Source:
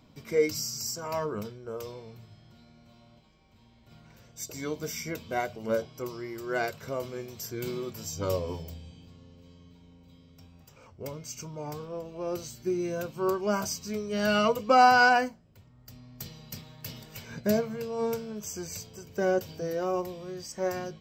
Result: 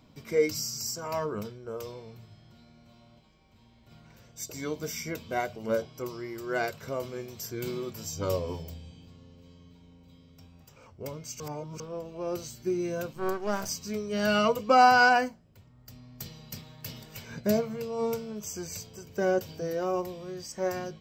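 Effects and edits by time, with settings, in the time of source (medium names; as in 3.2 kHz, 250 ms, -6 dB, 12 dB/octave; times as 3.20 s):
11.40–11.80 s: reverse
13.13–13.69 s: partial rectifier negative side -12 dB
17.46–18.55 s: band-stop 1.6 kHz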